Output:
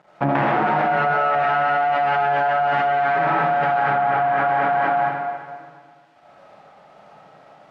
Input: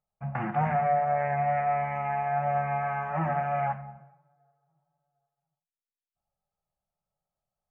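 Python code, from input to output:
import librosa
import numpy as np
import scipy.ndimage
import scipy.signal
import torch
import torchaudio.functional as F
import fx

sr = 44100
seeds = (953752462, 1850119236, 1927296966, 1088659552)

y = np.maximum(x, 0.0)
y = fx.bandpass_edges(y, sr, low_hz=230.0, high_hz=2400.0)
y = fx.echo_feedback(y, sr, ms=243, feedback_pct=53, wet_db=-16.0)
y = fx.rev_freeverb(y, sr, rt60_s=1.6, hf_ratio=0.75, predelay_ms=40, drr_db=-8.0)
y = fx.env_flatten(y, sr, amount_pct=100)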